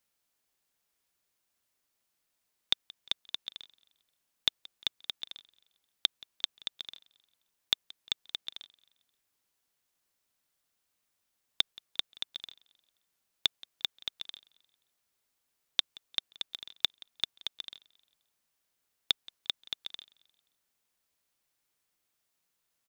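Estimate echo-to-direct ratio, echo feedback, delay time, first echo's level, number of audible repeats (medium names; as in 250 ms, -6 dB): -22.0 dB, 45%, 176 ms, -23.0 dB, 2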